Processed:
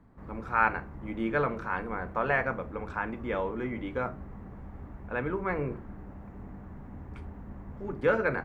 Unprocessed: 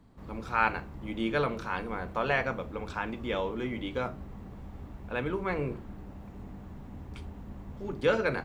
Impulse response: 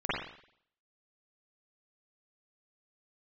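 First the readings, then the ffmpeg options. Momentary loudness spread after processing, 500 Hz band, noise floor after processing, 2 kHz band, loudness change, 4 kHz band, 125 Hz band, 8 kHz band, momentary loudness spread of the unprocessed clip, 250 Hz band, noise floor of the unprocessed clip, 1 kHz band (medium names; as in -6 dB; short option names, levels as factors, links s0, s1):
19 LU, +0.5 dB, -46 dBFS, +1.5 dB, +1.0 dB, -11.0 dB, 0.0 dB, no reading, 18 LU, 0.0 dB, -47 dBFS, +1.5 dB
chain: -af "highshelf=f=2500:t=q:w=1.5:g=-10"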